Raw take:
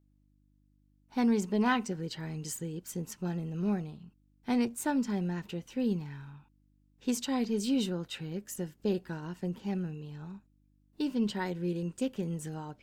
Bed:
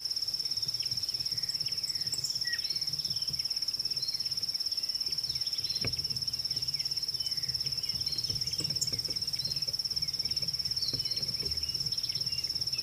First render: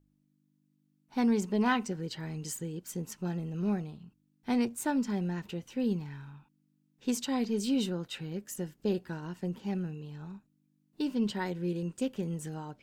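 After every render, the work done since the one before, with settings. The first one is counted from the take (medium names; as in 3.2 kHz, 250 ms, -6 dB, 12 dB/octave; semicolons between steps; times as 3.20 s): de-hum 50 Hz, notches 2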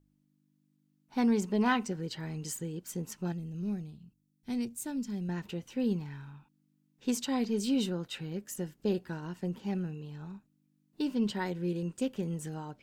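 3.32–5.29 s: peaking EQ 1 kHz -14.5 dB 3 oct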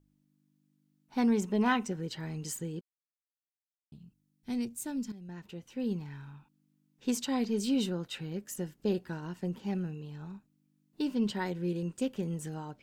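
1.29–2.12 s: band-stop 4.6 kHz, Q 7.1; 2.81–3.92 s: mute; 5.12–6.31 s: fade in, from -13.5 dB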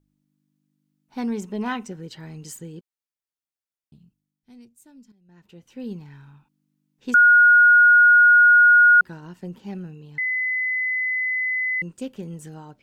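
3.97–5.71 s: dip -14 dB, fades 0.47 s; 7.14–9.01 s: bleep 1.44 kHz -9.5 dBFS; 10.18–11.82 s: bleep 2.02 kHz -21 dBFS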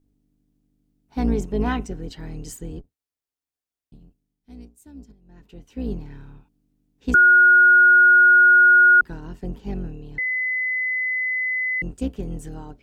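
octave divider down 2 oct, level +3 dB; small resonant body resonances 280/420/710 Hz, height 8 dB, ringing for 65 ms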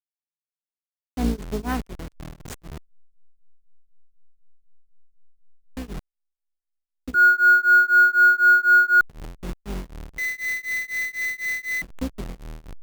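send-on-delta sampling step -28 dBFS; tremolo of two beating tones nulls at 4 Hz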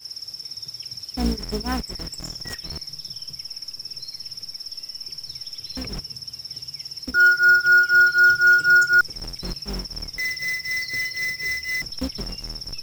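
add bed -2 dB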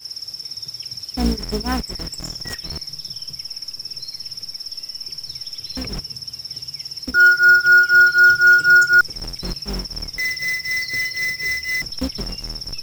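trim +3.5 dB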